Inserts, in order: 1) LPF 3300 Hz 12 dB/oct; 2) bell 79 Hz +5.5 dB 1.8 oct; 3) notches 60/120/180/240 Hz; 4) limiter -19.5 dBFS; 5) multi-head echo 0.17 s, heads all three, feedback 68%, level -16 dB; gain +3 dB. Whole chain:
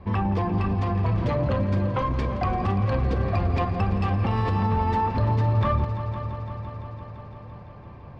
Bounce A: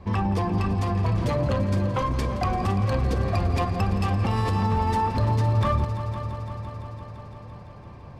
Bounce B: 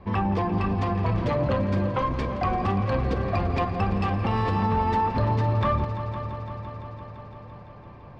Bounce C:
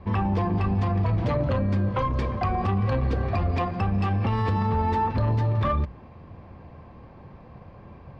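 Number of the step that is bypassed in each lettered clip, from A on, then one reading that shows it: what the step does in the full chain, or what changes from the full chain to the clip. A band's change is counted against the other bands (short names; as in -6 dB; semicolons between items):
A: 1, 4 kHz band +4.0 dB; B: 2, 125 Hz band -4.0 dB; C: 5, echo-to-direct -7.0 dB to none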